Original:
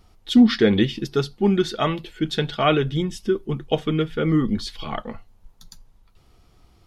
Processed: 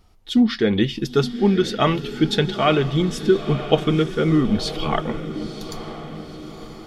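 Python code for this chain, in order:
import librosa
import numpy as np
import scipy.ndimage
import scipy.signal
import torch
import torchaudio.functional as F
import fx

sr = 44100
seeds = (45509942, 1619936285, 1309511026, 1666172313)

y = fx.rider(x, sr, range_db=5, speed_s=0.5)
y = fx.echo_diffused(y, sr, ms=968, feedback_pct=50, wet_db=-11.5)
y = y * 10.0 ** (1.5 / 20.0)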